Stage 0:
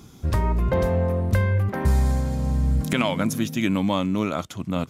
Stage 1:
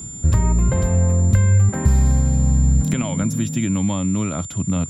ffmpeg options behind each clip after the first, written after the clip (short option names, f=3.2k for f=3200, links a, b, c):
-filter_complex "[0:a]acrossover=split=92|970[a][b][c];[a]acompressor=threshold=-31dB:ratio=4[d];[b]acompressor=threshold=-26dB:ratio=4[e];[c]acompressor=threshold=-32dB:ratio=4[f];[d][e][f]amix=inputs=3:normalize=0,bass=f=250:g=12,treble=f=4k:g=-3,aeval=exprs='val(0)+0.0251*sin(2*PI*7200*n/s)':c=same"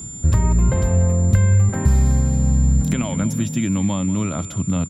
-af "aecho=1:1:189|378|567:0.158|0.0618|0.0241"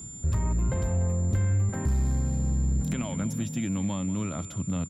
-af "asoftclip=type=tanh:threshold=-10.5dB,volume=-8dB"